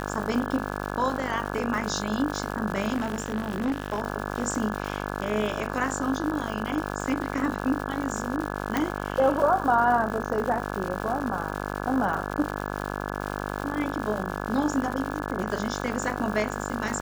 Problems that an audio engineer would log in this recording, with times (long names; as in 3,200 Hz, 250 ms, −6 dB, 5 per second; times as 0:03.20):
mains buzz 50 Hz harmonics 34 −32 dBFS
surface crackle 250 per second −32 dBFS
0:02.94–0:04.02: clipping −22.5 dBFS
0:08.77: click −10 dBFS